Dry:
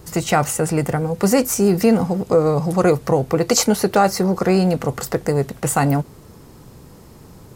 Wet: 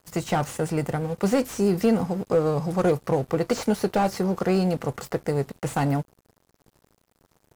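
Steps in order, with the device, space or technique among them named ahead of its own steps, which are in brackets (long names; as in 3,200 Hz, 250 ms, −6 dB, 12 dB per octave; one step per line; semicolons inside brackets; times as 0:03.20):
early transistor amplifier (dead-zone distortion −38 dBFS; slew-rate limiting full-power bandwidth 200 Hz)
level −5.5 dB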